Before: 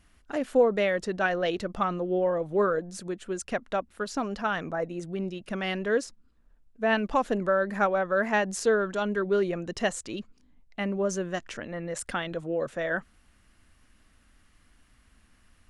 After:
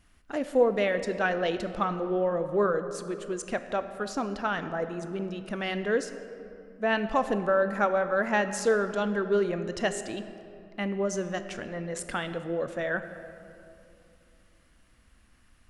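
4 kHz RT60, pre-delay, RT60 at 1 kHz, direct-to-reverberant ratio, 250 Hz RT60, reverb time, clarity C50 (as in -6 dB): 1.5 s, 16 ms, 2.6 s, 9.5 dB, 3.4 s, 2.8 s, 10.5 dB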